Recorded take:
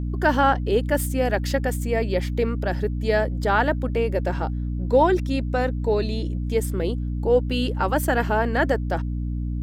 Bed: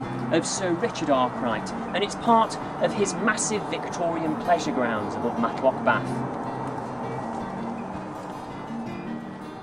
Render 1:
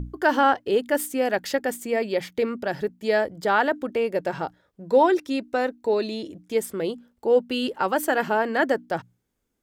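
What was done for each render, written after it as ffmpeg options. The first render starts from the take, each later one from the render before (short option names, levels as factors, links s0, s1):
-af "bandreject=f=60:t=h:w=6,bandreject=f=120:t=h:w=6,bandreject=f=180:t=h:w=6,bandreject=f=240:t=h:w=6,bandreject=f=300:t=h:w=6"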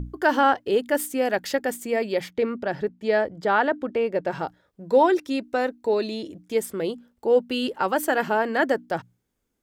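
-filter_complex "[0:a]asplit=3[s0][s1][s2];[s0]afade=t=out:st=2.29:d=0.02[s3];[s1]aemphasis=mode=reproduction:type=50fm,afade=t=in:st=2.29:d=0.02,afade=t=out:st=4.3:d=0.02[s4];[s2]afade=t=in:st=4.3:d=0.02[s5];[s3][s4][s5]amix=inputs=3:normalize=0"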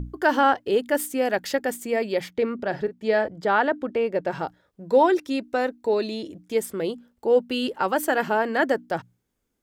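-filter_complex "[0:a]asettb=1/sr,asplit=3[s0][s1][s2];[s0]atrim=end=2.554[s3];[s1]atrim=start=2.55:end=3.28,asetpts=PTS-STARTPTS,afade=t=in:d=0.004:c=qsin,afade=t=out:st=0.726:d=0.004:c=qsin,asplit=2[s4][s5];[s5]adelay=41,volume=0.224[s6];[s4][s6]amix=inputs=2:normalize=0,atrim=end_sample=32193[s7];[s2]atrim=start=3.276[s8];[s3][s7]acrossfade=d=0.004:c1=hsin:c2=qsin[s9];[s9][s8]acrossfade=d=0.004:c1=qsin:c2=hsin"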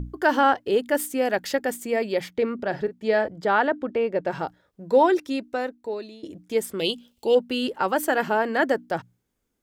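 -filter_complex "[0:a]asettb=1/sr,asplit=3[s0][s1][s2];[s0]atrim=end=3.674[s3];[s1]atrim=start=3.67:end=4.26,asetpts=PTS-STARTPTS,afade=t=in:d=0.004:c=qsin,afade=t=out:st=0.586:d=0.004:c=qsin,highshelf=f=6400:g=-7.5[s4];[s2]atrim=start=4.256[s5];[s3][s4]acrossfade=d=0.004:c1=hsin:c2=qsin[s6];[s6][s5]acrossfade=d=0.004:c1=qsin:c2=hsin,asettb=1/sr,asplit=3[s7][s8][s9];[s7]atrim=end=6.794[s10];[s8]atrim=start=6.79:end=7.35,asetpts=PTS-STARTPTS,afade=t=in:d=0.004:c=qsin,afade=t=out:st=0.556:d=0.004:c=qsin,highshelf=f=2200:t=q:w=3:g=9.5[s11];[s9]atrim=start=7.346[s12];[s10][s11]acrossfade=d=0.004:c1=hsin:c2=qsin[s13];[s13][s12]acrossfade=d=0.004:c1=qsin:c2=hsin,asplit=2[s14][s15];[s14]atrim=end=6.23,asetpts=PTS-STARTPTS,afade=t=out:st=5.2:d=1.03:silence=0.141254[s16];[s15]atrim=start=6.23,asetpts=PTS-STARTPTS,afade=t=in:d=0.004:c=hsin:silence=0.141254[s17];[s16][s17]concat=n=2:v=0:a=1"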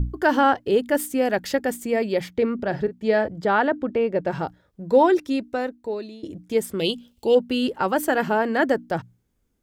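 -af "lowshelf=f=200:g=10.5"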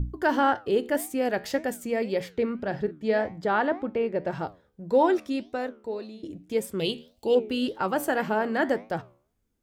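-af "flanger=delay=9:depth=5.2:regen=83:speed=1.8:shape=sinusoidal"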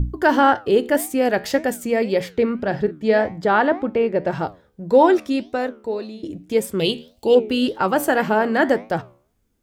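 -af "volume=2.37"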